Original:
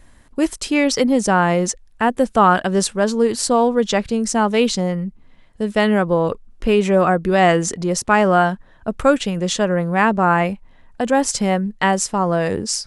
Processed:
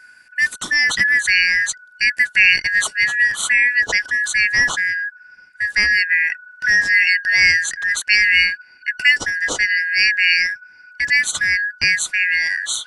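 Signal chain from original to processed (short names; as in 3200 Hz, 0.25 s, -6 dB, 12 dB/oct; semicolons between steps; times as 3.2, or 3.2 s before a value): four-band scrambler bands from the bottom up 3142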